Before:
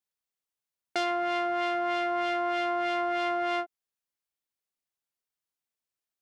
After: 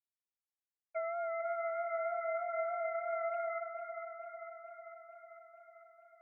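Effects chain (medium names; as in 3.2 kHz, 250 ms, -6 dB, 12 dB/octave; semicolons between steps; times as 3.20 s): formants replaced by sine waves; feedback echo behind a band-pass 447 ms, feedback 66%, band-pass 1.3 kHz, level -6 dB; trim -8.5 dB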